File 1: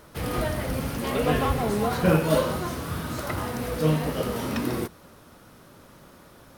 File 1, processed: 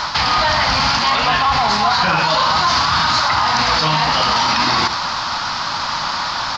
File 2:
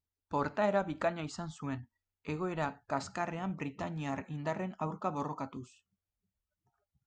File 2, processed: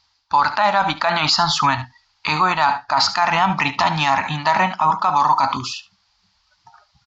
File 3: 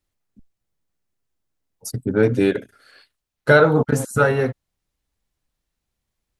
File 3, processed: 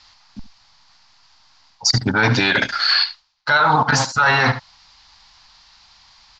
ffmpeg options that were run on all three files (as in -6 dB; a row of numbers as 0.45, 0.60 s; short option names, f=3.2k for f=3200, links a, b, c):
-af "lowshelf=f=640:t=q:w=3:g=-12,areverse,acompressor=threshold=-37dB:ratio=10,areverse,lowpass=f=4.7k:t=q:w=4.7,aresample=16000,volume=25dB,asoftclip=hard,volume=-25dB,aresample=44100,aecho=1:1:72:0.126,alimiter=level_in=34dB:limit=-1dB:release=50:level=0:latency=1,volume=-5.5dB"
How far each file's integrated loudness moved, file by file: +11.0, +18.5, +2.0 LU